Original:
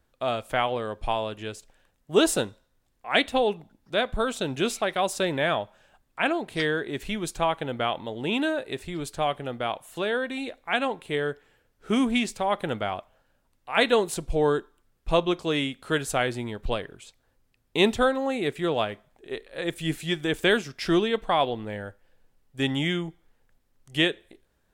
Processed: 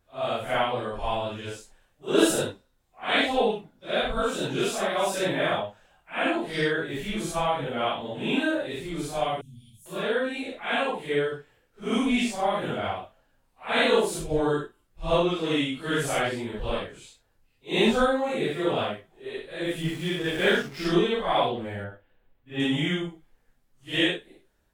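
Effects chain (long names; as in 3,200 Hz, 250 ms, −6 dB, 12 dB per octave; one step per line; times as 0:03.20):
random phases in long frames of 200 ms
0:09.41–0:09.86: elliptic band-stop filter 150–5,600 Hz, stop band 60 dB
0:19.82–0:20.86: slack as between gear wheels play −36 dBFS
0:21.84–0:22.60: flat-topped bell 7,600 Hz −15.5 dB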